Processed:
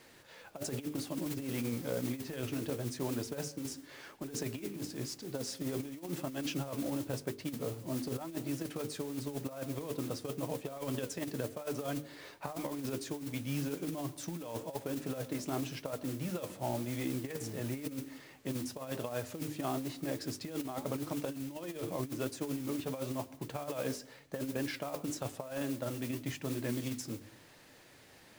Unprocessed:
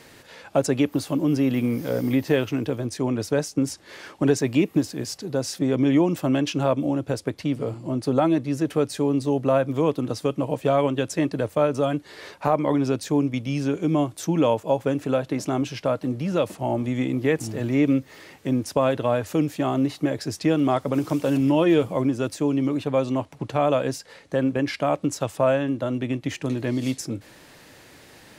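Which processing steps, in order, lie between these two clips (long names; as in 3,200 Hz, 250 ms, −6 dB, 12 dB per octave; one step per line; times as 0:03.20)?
on a send at −22.5 dB: convolution reverb RT60 0.65 s, pre-delay 106 ms
on the sum: flanger 0.94 Hz, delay 2.4 ms, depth 9.7 ms, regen +70%
noise that follows the level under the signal 14 dB
mains-hum notches 50/100/150/200/250/300/350/400/450 Hz
compressor whose output falls as the input rises −28 dBFS, ratio −0.5
level −8 dB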